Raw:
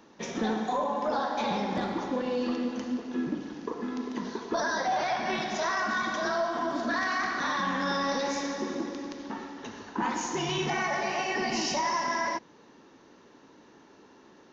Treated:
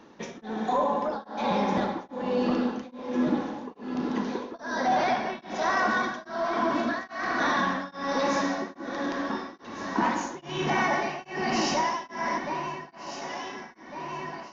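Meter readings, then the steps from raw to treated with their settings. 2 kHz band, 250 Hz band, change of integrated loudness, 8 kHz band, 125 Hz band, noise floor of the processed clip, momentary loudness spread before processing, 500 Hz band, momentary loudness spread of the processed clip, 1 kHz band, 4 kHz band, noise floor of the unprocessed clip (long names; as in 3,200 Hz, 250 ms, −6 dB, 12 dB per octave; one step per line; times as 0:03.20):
+1.0 dB, +3.0 dB, +1.5 dB, can't be measured, +2.5 dB, −51 dBFS, 8 LU, +2.0 dB, 12 LU, +2.5 dB, −1.0 dB, −56 dBFS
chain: high-shelf EQ 5,600 Hz −9.5 dB
on a send: delay that swaps between a low-pass and a high-pass 726 ms, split 1,200 Hz, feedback 78%, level −7 dB
on the sum: tremolo along a rectified sine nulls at 1.2 Hz
level +4.5 dB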